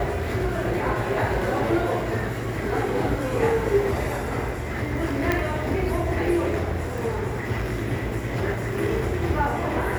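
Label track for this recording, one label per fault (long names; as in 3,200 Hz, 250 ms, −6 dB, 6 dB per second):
5.320000	5.320000	click −9 dBFS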